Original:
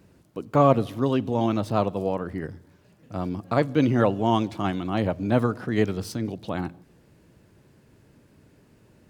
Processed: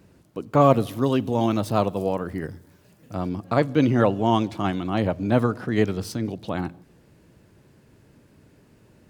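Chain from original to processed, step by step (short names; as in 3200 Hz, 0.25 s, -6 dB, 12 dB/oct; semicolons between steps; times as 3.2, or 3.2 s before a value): 0.61–3.15 high shelf 7700 Hz +11 dB; gain +1.5 dB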